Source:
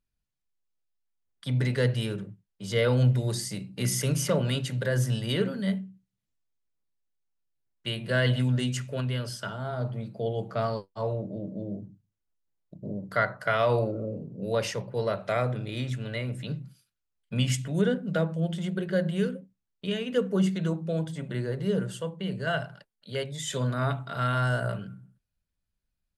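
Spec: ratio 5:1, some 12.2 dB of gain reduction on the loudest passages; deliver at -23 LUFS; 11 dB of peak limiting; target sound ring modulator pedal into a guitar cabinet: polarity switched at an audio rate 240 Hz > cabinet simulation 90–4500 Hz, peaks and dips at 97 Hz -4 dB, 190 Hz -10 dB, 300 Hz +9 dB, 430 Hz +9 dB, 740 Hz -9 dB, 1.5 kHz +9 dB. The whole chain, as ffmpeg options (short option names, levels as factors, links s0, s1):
-af "acompressor=threshold=0.0224:ratio=5,alimiter=level_in=1.78:limit=0.0631:level=0:latency=1,volume=0.562,aeval=exprs='val(0)*sgn(sin(2*PI*240*n/s))':c=same,highpass=90,equalizer=f=97:t=q:w=4:g=-4,equalizer=f=190:t=q:w=4:g=-10,equalizer=f=300:t=q:w=4:g=9,equalizer=f=430:t=q:w=4:g=9,equalizer=f=740:t=q:w=4:g=-9,equalizer=f=1500:t=q:w=4:g=9,lowpass=f=4500:w=0.5412,lowpass=f=4500:w=1.3066,volume=4.22"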